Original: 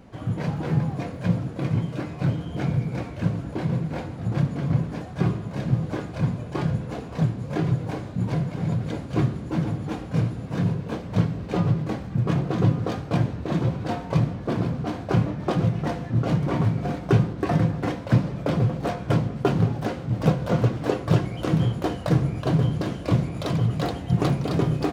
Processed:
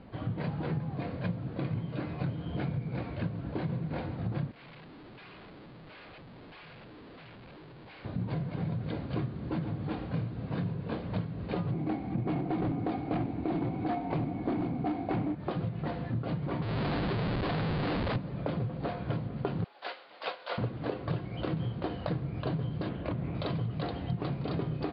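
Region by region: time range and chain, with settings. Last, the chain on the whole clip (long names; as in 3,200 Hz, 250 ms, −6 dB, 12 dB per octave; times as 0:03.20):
0:04.51–0:08.05: auto-filter band-pass square 1.5 Hz 350–2,600 Hz + downward compressor 3 to 1, threshold −44 dBFS + comparator with hysteresis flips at −57 dBFS
0:11.72–0:15.35: hollow resonant body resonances 300/730/2,200 Hz, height 15 dB, ringing for 25 ms + hard clipping −12.5 dBFS
0:16.62–0:18.16: low-pass filter 2,500 Hz + low-shelf EQ 62 Hz −8.5 dB + comparator with hysteresis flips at −38 dBFS
0:19.64–0:20.58: Bessel high-pass filter 810 Hz, order 4 + high-shelf EQ 2,400 Hz +8.5 dB + expander for the loud parts, over −40 dBFS
0:22.89–0:23.35: low-pass filter 2,800 Hz + downward compressor, threshold −23 dBFS + highs frequency-modulated by the lows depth 0.24 ms
whole clip: Butterworth low-pass 4,700 Hz 96 dB per octave; downward compressor, threshold −28 dBFS; level −2 dB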